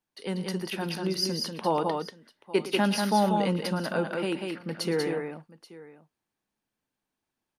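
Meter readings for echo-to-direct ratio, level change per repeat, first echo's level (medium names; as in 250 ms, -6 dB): -3.5 dB, no regular repeats, -15.5 dB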